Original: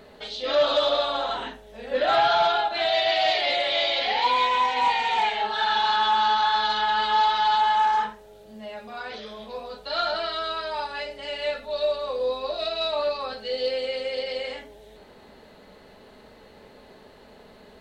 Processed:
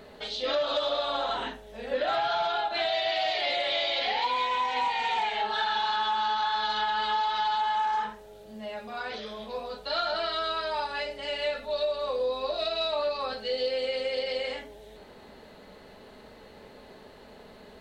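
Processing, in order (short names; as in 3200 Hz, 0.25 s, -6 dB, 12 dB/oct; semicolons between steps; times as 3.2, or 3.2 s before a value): compressor, threshold -25 dBFS, peak gain reduction 8.5 dB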